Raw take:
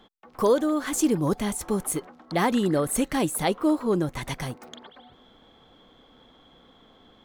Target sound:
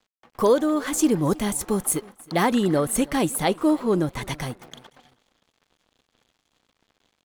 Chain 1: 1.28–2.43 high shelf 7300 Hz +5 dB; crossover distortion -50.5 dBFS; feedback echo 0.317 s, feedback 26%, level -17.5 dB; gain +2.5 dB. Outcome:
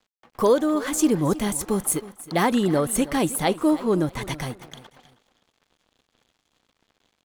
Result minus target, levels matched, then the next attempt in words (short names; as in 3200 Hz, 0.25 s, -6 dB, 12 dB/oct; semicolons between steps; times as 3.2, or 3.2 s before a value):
echo-to-direct +6 dB
1.28–2.43 high shelf 7300 Hz +5 dB; crossover distortion -50.5 dBFS; feedback echo 0.317 s, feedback 26%, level -23.5 dB; gain +2.5 dB